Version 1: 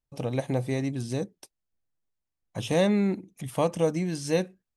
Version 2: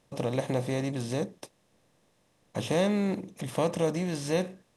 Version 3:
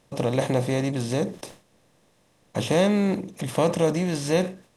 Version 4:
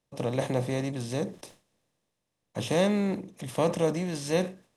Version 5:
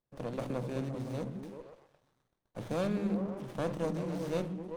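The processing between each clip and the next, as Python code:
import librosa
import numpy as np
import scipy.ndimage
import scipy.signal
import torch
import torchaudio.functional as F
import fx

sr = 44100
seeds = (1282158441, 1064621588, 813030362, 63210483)

y1 = fx.bin_compress(x, sr, power=0.6)
y1 = y1 * 10.0 ** (-4.5 / 20.0)
y2 = fx.sustainer(y1, sr, db_per_s=150.0)
y2 = y2 * 10.0 ** (5.5 / 20.0)
y3 = fx.band_widen(y2, sr, depth_pct=40)
y3 = y3 * 10.0 ** (-5.0 / 20.0)
y4 = fx.echo_stepped(y3, sr, ms=128, hz=170.0, octaves=0.7, feedback_pct=70, wet_db=-0.5)
y4 = fx.running_max(y4, sr, window=17)
y4 = y4 * 10.0 ** (-8.0 / 20.0)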